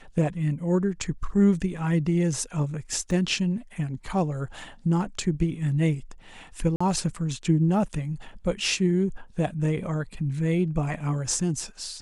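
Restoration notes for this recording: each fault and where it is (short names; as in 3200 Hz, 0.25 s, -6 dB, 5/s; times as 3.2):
3.11 gap 3.1 ms
6.76–6.8 gap 45 ms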